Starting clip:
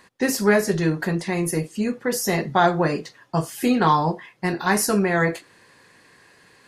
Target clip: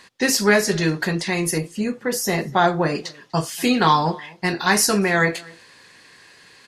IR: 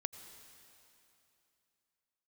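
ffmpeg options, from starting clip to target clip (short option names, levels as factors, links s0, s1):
-filter_complex "[0:a]asetnsamples=n=441:p=0,asendcmd='1.58 equalizer g 2;2.95 equalizer g 9',equalizer=f=4200:t=o:w=2.3:g=9.5,asplit=2[s0][s1];[s1]adelay=244.9,volume=0.0631,highshelf=f=4000:g=-5.51[s2];[s0][s2]amix=inputs=2:normalize=0"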